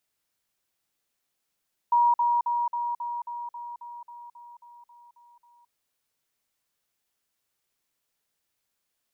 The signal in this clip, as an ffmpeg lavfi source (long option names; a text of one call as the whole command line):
ffmpeg -f lavfi -i "aevalsrc='pow(10,(-17-3*floor(t/0.27))/20)*sin(2*PI*954*t)*clip(min(mod(t,0.27),0.22-mod(t,0.27))/0.005,0,1)':duration=3.78:sample_rate=44100" out.wav